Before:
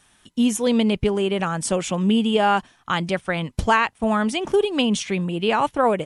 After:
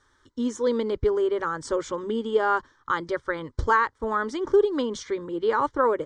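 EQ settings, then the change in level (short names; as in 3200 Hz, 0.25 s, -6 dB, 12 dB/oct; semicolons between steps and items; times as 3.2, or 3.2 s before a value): Bessel low-pass 4300 Hz, order 8; fixed phaser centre 710 Hz, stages 6; 0.0 dB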